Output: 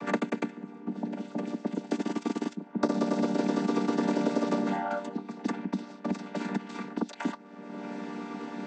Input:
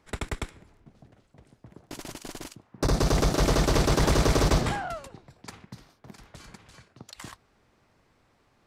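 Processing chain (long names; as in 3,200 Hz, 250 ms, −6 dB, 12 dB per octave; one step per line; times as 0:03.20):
channel vocoder with a chord as carrier minor triad, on G3
multiband upward and downward compressor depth 100%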